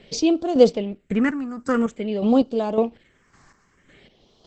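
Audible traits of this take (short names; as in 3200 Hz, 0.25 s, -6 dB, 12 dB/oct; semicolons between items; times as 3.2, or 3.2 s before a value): chopped level 1.8 Hz, depth 60%, duty 35%; phasing stages 4, 0.5 Hz, lowest notch 540–1900 Hz; Opus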